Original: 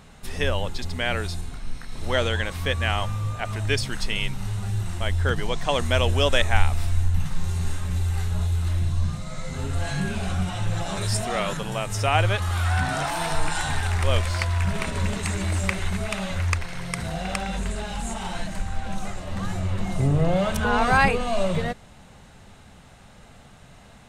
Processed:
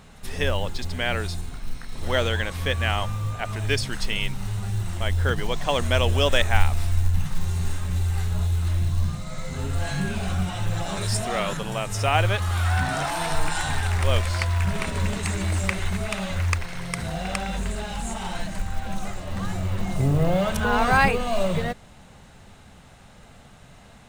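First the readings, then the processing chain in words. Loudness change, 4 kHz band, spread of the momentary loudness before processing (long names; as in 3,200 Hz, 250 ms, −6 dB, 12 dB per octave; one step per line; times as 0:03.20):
0.0 dB, 0.0 dB, 10 LU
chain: floating-point word with a short mantissa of 4 bits
on a send: backwards echo 81 ms −22 dB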